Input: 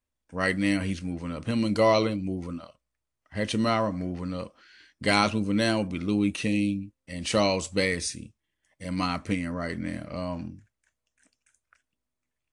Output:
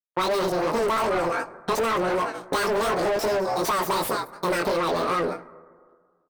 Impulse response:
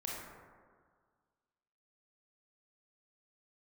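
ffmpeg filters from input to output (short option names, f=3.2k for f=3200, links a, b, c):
-filter_complex "[0:a]aeval=exprs='if(lt(val(0),0),0.447*val(0),val(0))':c=same,equalizer=f=1.4k:t=o:w=0.8:g=-13,asplit=4[a][b][c][d];[b]adelay=414,afreqshift=64,volume=-18dB[e];[c]adelay=828,afreqshift=128,volume=-25.5dB[f];[d]adelay=1242,afreqshift=192,volume=-33.1dB[g];[a][e][f][g]amix=inputs=4:normalize=0,agate=range=-46dB:threshold=-47dB:ratio=16:detection=peak,asetrate=87759,aresample=44100,flanger=delay=17.5:depth=5.4:speed=2.7,asplit=2[h][i];[i]highpass=f=720:p=1,volume=32dB,asoftclip=type=tanh:threshold=-13.5dB[j];[h][j]amix=inputs=2:normalize=0,lowpass=f=3.7k:p=1,volume=-6dB,asplit=2[k][l];[1:a]atrim=start_sample=2205[m];[l][m]afir=irnorm=-1:irlink=0,volume=-20.5dB[n];[k][n]amix=inputs=2:normalize=0,acompressor=threshold=-26dB:ratio=6,equalizer=f=6.7k:t=o:w=1.3:g=-5,volume=4dB"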